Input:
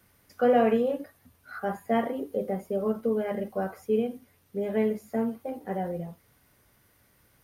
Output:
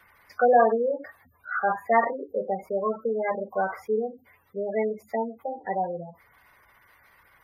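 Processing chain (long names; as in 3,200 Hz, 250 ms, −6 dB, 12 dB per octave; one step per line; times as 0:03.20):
gate on every frequency bin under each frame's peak −20 dB strong
graphic EQ with 10 bands 125 Hz −5 dB, 250 Hz −6 dB, 1,000 Hz +12 dB, 2,000 Hz +10 dB, 4,000 Hz +7 dB, 8,000 Hz −5 dB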